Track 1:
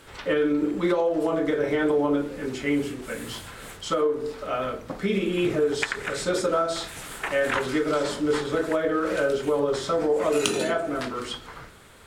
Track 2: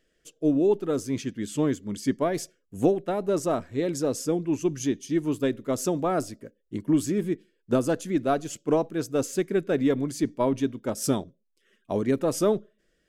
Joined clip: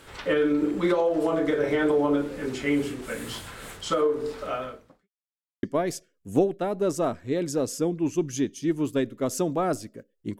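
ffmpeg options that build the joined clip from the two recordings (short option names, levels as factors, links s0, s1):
-filter_complex "[0:a]apad=whole_dur=10.39,atrim=end=10.39,asplit=2[s0][s1];[s0]atrim=end=5.09,asetpts=PTS-STARTPTS,afade=t=out:st=4.46:d=0.63:c=qua[s2];[s1]atrim=start=5.09:end=5.63,asetpts=PTS-STARTPTS,volume=0[s3];[1:a]atrim=start=2.1:end=6.86,asetpts=PTS-STARTPTS,afade=t=in:d=0.004:c=hsin[s4];[s2][s3][s4]concat=n=3:v=0:a=1"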